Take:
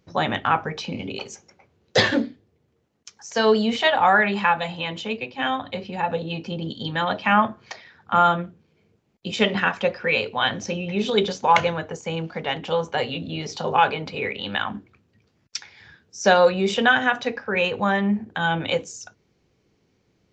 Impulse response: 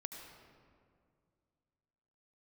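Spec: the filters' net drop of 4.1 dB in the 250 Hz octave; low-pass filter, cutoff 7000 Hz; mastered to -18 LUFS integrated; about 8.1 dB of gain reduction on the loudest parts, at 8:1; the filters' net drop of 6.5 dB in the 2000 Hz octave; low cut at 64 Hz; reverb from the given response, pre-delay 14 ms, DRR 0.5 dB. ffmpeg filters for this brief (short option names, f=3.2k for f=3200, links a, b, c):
-filter_complex "[0:a]highpass=64,lowpass=7k,equalizer=f=250:t=o:g=-5.5,equalizer=f=2k:t=o:g=-9,acompressor=threshold=-21dB:ratio=8,asplit=2[a][b];[1:a]atrim=start_sample=2205,adelay=14[c];[b][c]afir=irnorm=-1:irlink=0,volume=2dB[d];[a][d]amix=inputs=2:normalize=0,volume=8dB"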